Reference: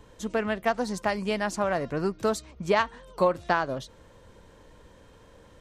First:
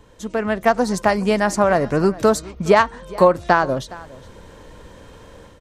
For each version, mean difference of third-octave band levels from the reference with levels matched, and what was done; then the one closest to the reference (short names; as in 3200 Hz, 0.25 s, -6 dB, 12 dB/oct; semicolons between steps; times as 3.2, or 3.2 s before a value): 2.0 dB: dynamic EQ 3100 Hz, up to -6 dB, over -45 dBFS, Q 1.2; AGC gain up to 8.5 dB; echo 0.415 s -20.5 dB; gain +2.5 dB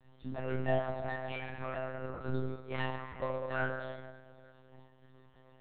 10.0 dB: metallic resonator 110 Hz, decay 0.65 s, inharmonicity 0.002; shoebox room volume 2500 m³, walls mixed, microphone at 2.6 m; monotone LPC vocoder at 8 kHz 130 Hz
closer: first